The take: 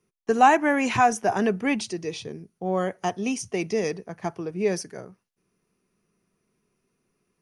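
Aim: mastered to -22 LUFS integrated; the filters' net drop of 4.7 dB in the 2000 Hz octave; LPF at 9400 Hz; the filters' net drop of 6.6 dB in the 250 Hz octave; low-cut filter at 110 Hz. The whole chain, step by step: HPF 110 Hz; LPF 9400 Hz; bell 250 Hz -8 dB; bell 2000 Hz -6 dB; gain +5 dB

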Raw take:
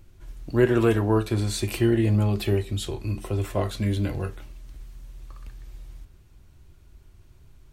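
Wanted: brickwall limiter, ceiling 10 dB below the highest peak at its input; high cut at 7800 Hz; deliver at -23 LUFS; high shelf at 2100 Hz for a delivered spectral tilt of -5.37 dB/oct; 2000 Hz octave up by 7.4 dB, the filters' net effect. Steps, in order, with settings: LPF 7800 Hz; bell 2000 Hz +6.5 dB; high shelf 2100 Hz +5.5 dB; gain +4 dB; limiter -12.5 dBFS

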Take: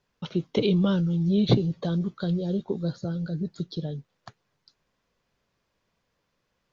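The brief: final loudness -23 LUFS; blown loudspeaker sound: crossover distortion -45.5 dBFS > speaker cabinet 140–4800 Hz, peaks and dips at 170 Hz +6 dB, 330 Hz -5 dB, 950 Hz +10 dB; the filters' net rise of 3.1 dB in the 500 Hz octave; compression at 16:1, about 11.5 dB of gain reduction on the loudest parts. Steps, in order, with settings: bell 500 Hz +5 dB; compressor 16:1, threshold -24 dBFS; crossover distortion -45.5 dBFS; speaker cabinet 140–4800 Hz, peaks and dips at 170 Hz +6 dB, 330 Hz -5 dB, 950 Hz +10 dB; gain +6 dB

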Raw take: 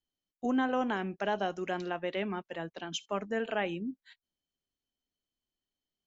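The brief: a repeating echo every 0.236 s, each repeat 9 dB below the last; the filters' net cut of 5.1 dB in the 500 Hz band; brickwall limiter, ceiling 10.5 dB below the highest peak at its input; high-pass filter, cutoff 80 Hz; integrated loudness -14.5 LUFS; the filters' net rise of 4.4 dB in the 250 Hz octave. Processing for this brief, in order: HPF 80 Hz; bell 250 Hz +7 dB; bell 500 Hz -9 dB; limiter -27 dBFS; feedback echo 0.236 s, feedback 35%, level -9 dB; gain +22.5 dB

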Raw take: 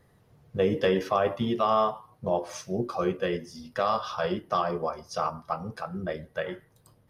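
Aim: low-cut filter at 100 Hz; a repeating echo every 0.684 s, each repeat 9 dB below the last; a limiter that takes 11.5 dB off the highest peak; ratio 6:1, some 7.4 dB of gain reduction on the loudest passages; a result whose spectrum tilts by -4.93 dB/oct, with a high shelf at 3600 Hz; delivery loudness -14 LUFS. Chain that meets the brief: HPF 100 Hz; high shelf 3600 Hz -3.5 dB; compressor 6:1, threshold -27 dBFS; limiter -27 dBFS; feedback echo 0.684 s, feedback 35%, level -9 dB; gain +23.5 dB

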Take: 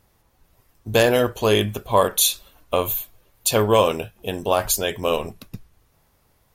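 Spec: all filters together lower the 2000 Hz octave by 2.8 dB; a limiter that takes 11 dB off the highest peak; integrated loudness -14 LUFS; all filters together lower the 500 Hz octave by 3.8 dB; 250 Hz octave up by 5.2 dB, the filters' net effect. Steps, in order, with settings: bell 250 Hz +8.5 dB; bell 500 Hz -6.5 dB; bell 2000 Hz -3.5 dB; gain +13 dB; limiter -1.5 dBFS

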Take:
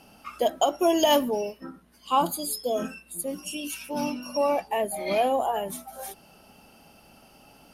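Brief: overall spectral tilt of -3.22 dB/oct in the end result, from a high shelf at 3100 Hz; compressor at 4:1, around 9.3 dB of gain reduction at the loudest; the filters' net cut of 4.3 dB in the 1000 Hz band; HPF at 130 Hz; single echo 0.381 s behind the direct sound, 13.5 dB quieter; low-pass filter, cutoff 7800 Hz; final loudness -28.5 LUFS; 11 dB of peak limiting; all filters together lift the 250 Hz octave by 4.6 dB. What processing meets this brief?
HPF 130 Hz; LPF 7800 Hz; bell 250 Hz +6.5 dB; bell 1000 Hz -7 dB; high shelf 3100 Hz +4.5 dB; compressor 4:1, threshold -28 dBFS; limiter -27.5 dBFS; echo 0.381 s -13.5 dB; gain +8 dB

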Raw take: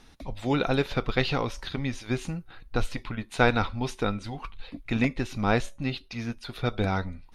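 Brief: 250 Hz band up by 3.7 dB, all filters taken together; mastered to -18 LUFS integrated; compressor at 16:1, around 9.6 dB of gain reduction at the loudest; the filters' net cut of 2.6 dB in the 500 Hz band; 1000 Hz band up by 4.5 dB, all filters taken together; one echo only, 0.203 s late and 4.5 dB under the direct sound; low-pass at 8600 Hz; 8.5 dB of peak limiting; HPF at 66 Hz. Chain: HPF 66 Hz; LPF 8600 Hz; bell 250 Hz +5.5 dB; bell 500 Hz -7 dB; bell 1000 Hz +8.5 dB; compressor 16:1, threshold -24 dBFS; limiter -21.5 dBFS; echo 0.203 s -4.5 dB; gain +14.5 dB

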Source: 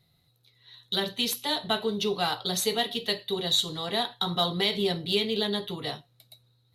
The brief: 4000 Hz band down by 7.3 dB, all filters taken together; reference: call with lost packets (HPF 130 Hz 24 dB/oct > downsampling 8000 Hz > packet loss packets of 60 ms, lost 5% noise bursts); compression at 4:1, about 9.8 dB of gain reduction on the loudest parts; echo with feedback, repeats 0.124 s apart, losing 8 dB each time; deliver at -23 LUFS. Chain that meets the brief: bell 4000 Hz -8.5 dB; compressor 4:1, threshold -35 dBFS; HPF 130 Hz 24 dB/oct; feedback echo 0.124 s, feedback 40%, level -8 dB; downsampling 8000 Hz; packet loss packets of 60 ms, lost 5% noise bursts; gain +15 dB

